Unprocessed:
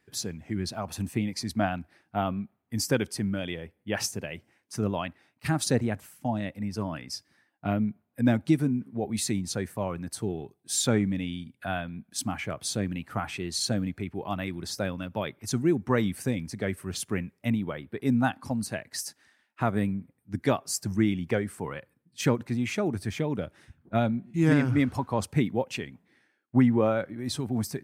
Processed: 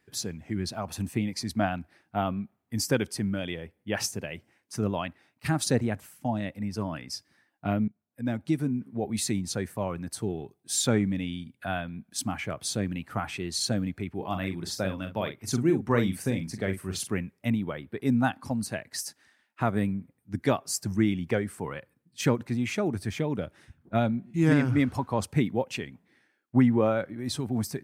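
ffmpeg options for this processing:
-filter_complex "[0:a]asettb=1/sr,asplit=3[a][b][c];[a]atrim=end=14.154[d];[b]atrim=start=14.15:end=17.09,asetpts=PTS-STARTPTS,afade=t=in:d=0.004:c=qsin,afade=t=out:st=2.936:d=0.004:c=qsin,asplit=2[e][f];[f]adelay=42,volume=-8dB[g];[e][g]amix=inputs=2:normalize=0,atrim=end_sample=129654[h];[c]atrim=start=17.086[i];[d][h]acrossfade=d=0.004:c1=hsin:c2=qsin[j];[j][i]acrossfade=d=0.004:c1=qsin:c2=hsin,asplit=2[k][l];[k]atrim=end=7.88,asetpts=PTS-STARTPTS,afade=t=out:st=7.876:d=0.004:c=hsin:silence=0.0891251[m];[l]atrim=start=7.88,asetpts=PTS-STARTPTS,afade=t=in:d=1.06:silence=0.0891251[n];[m][n]concat=n=2:v=0:a=1"

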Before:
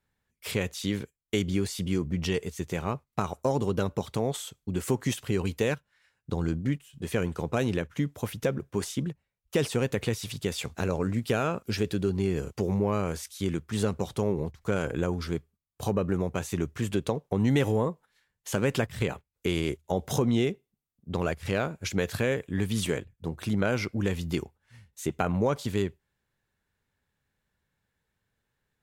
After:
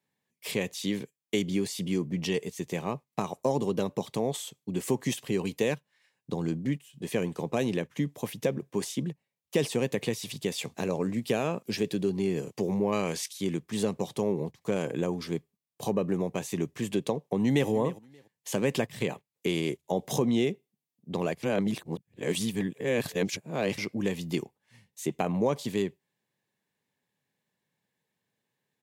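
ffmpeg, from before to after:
-filter_complex "[0:a]asettb=1/sr,asplit=3[a][b][c];[a]atrim=end=12.924[d];[b]atrim=start=12.92:end=13.33,asetpts=PTS-STARTPTS,afade=t=in:d=0.004:c=qsin,afade=t=out:st=0.406:d=0.004:c=qsin,equalizer=f=3.5k:t=o:w=2.8:g=8[e];[c]atrim=start=13.326[f];[d][e]acrossfade=d=0.004:c1=hsin:c2=qsin[g];[g][f]acrossfade=d=0.004:c1=qsin:c2=hsin,asplit=2[h][i];[i]afade=t=in:st=17.25:d=0.01,afade=t=out:st=17.69:d=0.01,aecho=0:1:290|580:0.149624|0.0299247[j];[h][j]amix=inputs=2:normalize=0,asplit=3[k][l][m];[k]atrim=end=21.432[n];[l]atrim=start=21.428:end=23.782,asetpts=PTS-STARTPTS,areverse[o];[m]atrim=start=23.778[p];[n][o]acrossfade=d=0.004:c1=hsin:c2=hsin[q];[q][p]acrossfade=d=0.004:c1=hsin:c2=hsin,highpass=f=140:w=0.5412,highpass=f=140:w=1.3066,equalizer=f=1.4k:t=o:w=0.27:g=-13.5"

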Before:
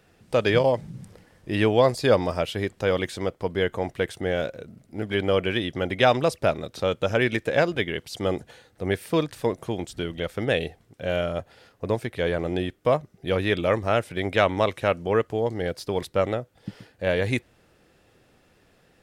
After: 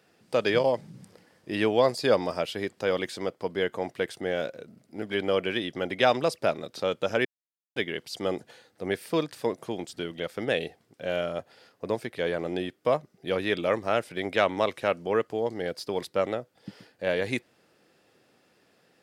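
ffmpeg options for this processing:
-filter_complex "[0:a]asplit=3[a][b][c];[a]atrim=end=7.25,asetpts=PTS-STARTPTS,afade=t=out:st=7.246:d=0.004:c=hsin[d];[b]atrim=start=7.25:end=7.76,asetpts=PTS-STARTPTS,volume=0[e];[c]atrim=start=7.76,asetpts=PTS-STARTPTS,afade=t=in:d=0.004:c=hsin[f];[d][e][f]concat=n=3:v=0:a=1,highpass=180,equalizer=f=4.8k:t=o:w=0.27:g=5,volume=-3dB"

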